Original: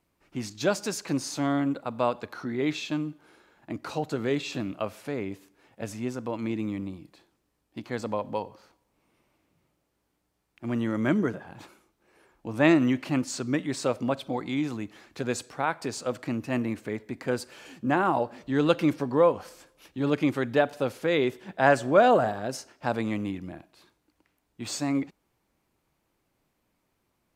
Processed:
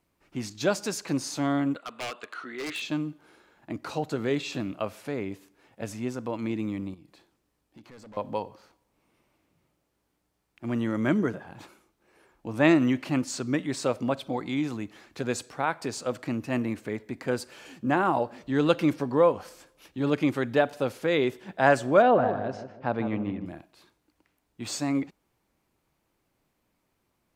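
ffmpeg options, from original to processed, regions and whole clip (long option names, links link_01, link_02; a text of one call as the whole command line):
ffmpeg -i in.wav -filter_complex "[0:a]asettb=1/sr,asplit=3[link_01][link_02][link_03];[link_01]atrim=end=1.764[link_04];[link_02]atrim=start=1.76:end=2.82,asetpts=PTS-STARTPTS,afade=type=in:duration=0.004:curve=qsin,afade=type=out:start_time=1.056:duration=0.004:curve=qsin,highpass=460,equalizer=frequency=540:width_type=q:width=4:gain=-6,equalizer=frequency=850:width_type=q:width=4:gain=-10,equalizer=frequency=1300:width_type=q:width=4:gain=5,equalizer=frequency=1900:width_type=q:width=4:gain=3,equalizer=frequency=2900:width_type=q:width=4:gain=8,equalizer=frequency=5500:width_type=q:width=4:gain=-10,lowpass=frequency=9700:width=0.5412,lowpass=frequency=9700:width=1.3066,aeval=exprs='0.0398*(abs(mod(val(0)/0.0398+3,4)-2)-1)':channel_layout=same[link_05];[link_03]atrim=start=2.816[link_06];[link_04][link_05]acrossfade=duration=0.004:curve1=hsin:curve2=qsin[link_07];[link_07][link_06]acrossfade=duration=0.004:curve1=qsin:curve2=hsin,asettb=1/sr,asplit=3[link_08][link_09][link_10];[link_08]atrim=end=6.944[link_11];[link_09]atrim=start=6.94:end=8.17,asetpts=PTS-STARTPTS,afade=type=in:duration=0.004:curve=qsin,afade=type=out:start_time=1.226:duration=0.004:curve=qsin,asoftclip=type=hard:threshold=-32.5dB,acompressor=threshold=-49dB:ratio=4:attack=3.2:release=140:knee=1:detection=peak[link_12];[link_10]atrim=start=8.166[link_13];[link_11][link_12]acrossfade=duration=0.004:curve1=hsin:curve2=qsin[link_14];[link_14][link_13]acrossfade=duration=0.004:curve1=qsin:curve2=hsin,asettb=1/sr,asplit=3[link_15][link_16][link_17];[link_15]atrim=end=22.024[link_18];[link_16]atrim=start=22.02:end=23.46,asetpts=PTS-STARTPTS,afade=type=in:duration=0.004:curve=qsin,afade=type=out:start_time=1.436:duration=0.004:curve=qsin,lowpass=4300,aemphasis=mode=reproduction:type=75kf,asplit=2[link_19][link_20];[link_20]adelay=155,lowpass=frequency=1100:poles=1,volume=-8dB,asplit=2[link_21][link_22];[link_22]adelay=155,lowpass=frequency=1100:poles=1,volume=0.39,asplit=2[link_23][link_24];[link_24]adelay=155,lowpass=frequency=1100:poles=1,volume=0.39,asplit=2[link_25][link_26];[link_26]adelay=155,lowpass=frequency=1100:poles=1,volume=0.39[link_27];[link_19][link_21][link_23][link_25][link_27]amix=inputs=5:normalize=0,atrim=end_sample=63504[link_28];[link_17]atrim=start=23.456[link_29];[link_18][link_28]acrossfade=duration=0.004:curve1=hsin:curve2=qsin[link_30];[link_30][link_29]acrossfade=duration=0.004:curve1=qsin:curve2=hsin" out.wav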